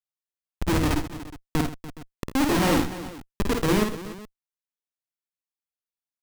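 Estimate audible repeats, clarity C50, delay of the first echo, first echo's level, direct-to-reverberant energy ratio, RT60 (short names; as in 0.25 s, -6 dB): 5, none, 52 ms, -4.5 dB, none, none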